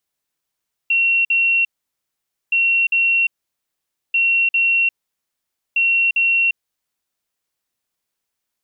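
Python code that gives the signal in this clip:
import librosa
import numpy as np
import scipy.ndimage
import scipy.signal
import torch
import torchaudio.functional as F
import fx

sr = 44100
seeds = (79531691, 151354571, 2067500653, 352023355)

y = fx.beep_pattern(sr, wave='sine', hz=2730.0, on_s=0.35, off_s=0.05, beeps=2, pause_s=0.87, groups=4, level_db=-13.0)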